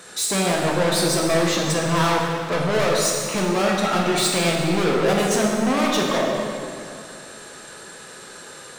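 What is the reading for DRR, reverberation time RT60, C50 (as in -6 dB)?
-2.0 dB, 2.6 s, 0.5 dB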